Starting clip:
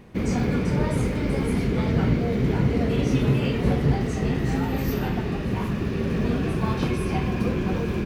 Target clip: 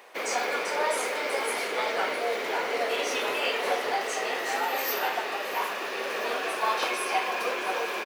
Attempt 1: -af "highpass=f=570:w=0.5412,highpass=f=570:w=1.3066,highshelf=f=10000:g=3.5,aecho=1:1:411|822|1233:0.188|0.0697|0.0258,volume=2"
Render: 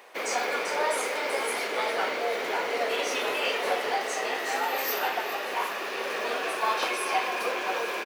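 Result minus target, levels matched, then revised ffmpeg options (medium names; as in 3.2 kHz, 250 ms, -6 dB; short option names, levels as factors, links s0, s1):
echo 254 ms early
-af "highpass=f=570:w=0.5412,highpass=f=570:w=1.3066,highshelf=f=10000:g=3.5,aecho=1:1:665|1330|1995:0.188|0.0697|0.0258,volume=2"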